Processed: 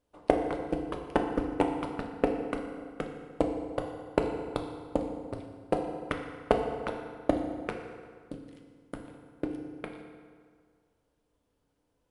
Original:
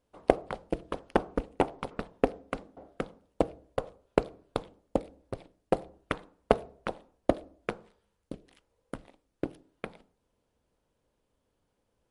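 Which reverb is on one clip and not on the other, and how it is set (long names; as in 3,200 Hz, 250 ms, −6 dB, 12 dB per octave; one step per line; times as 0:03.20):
feedback delay network reverb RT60 1.9 s, low-frequency decay 1×, high-frequency decay 0.7×, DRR 2.5 dB
level −2 dB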